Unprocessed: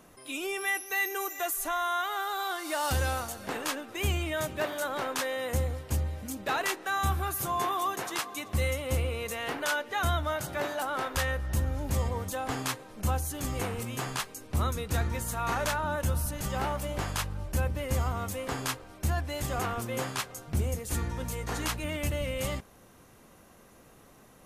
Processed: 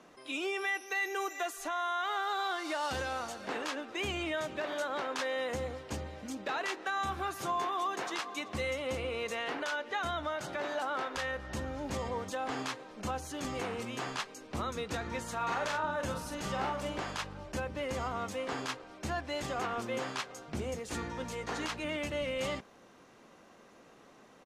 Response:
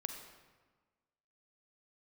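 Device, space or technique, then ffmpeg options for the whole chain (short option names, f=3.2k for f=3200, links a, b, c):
DJ mixer with the lows and highs turned down: -filter_complex "[0:a]acrossover=split=180 6800:gain=0.178 1 0.0794[a][b][c];[a][b][c]amix=inputs=3:normalize=0,alimiter=level_in=1.5dB:limit=-24dB:level=0:latency=1:release=98,volume=-1.5dB,asplit=3[d][e][f];[d]afade=t=out:st=15.39:d=0.02[g];[e]asplit=2[h][i];[i]adelay=45,volume=-5.5dB[j];[h][j]amix=inputs=2:normalize=0,afade=t=in:st=15.39:d=0.02,afade=t=out:st=17.01:d=0.02[k];[f]afade=t=in:st=17.01:d=0.02[l];[g][k][l]amix=inputs=3:normalize=0"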